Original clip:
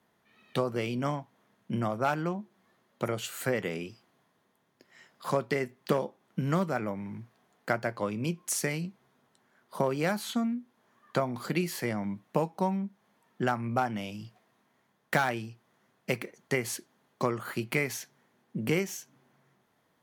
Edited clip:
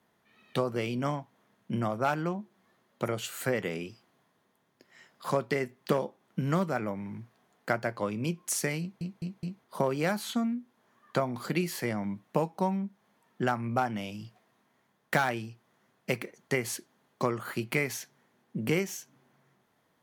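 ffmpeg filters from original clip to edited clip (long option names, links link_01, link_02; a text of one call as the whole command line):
ffmpeg -i in.wav -filter_complex "[0:a]asplit=5[link_01][link_02][link_03][link_04][link_05];[link_01]atrim=end=9.012[link_06];[link_02]atrim=start=8.798:end=9.012[link_07];[link_03]atrim=start=8.798:end=9.012[link_08];[link_04]atrim=start=8.798:end=9.012[link_09];[link_05]atrim=start=9.638[link_10];[link_06][link_07]acrossfade=duration=0.004:curve1=hsin:curve2=hsin[link_11];[link_11][link_08]acrossfade=duration=0.004:curve1=hsin:curve2=hsin[link_12];[link_12][link_09]acrossfade=duration=0.004:curve1=hsin:curve2=hsin[link_13];[link_13][link_10]acrossfade=duration=0.004:curve1=hsin:curve2=hsin" out.wav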